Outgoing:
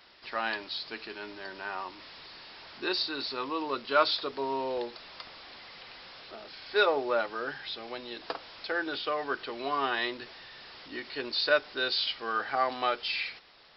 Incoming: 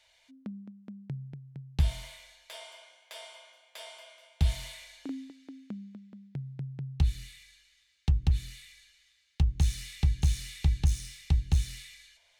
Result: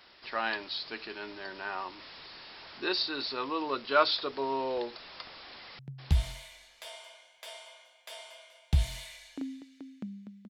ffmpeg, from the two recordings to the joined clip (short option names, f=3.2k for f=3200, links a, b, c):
-filter_complex "[0:a]apad=whole_dur=10.49,atrim=end=10.49,atrim=end=5.792[a];[1:a]atrim=start=1.468:end=6.17[b];[a][b]acrossfade=d=0.004:c1=hsin:c2=hsin,asplit=2[c][d];[d]afade=t=in:st=5.45:d=0.01,afade=t=out:st=5.79:d=0.01,aecho=0:1:530|1060|1590:0.630957|0.0946436|0.0141965[e];[c][e]amix=inputs=2:normalize=0"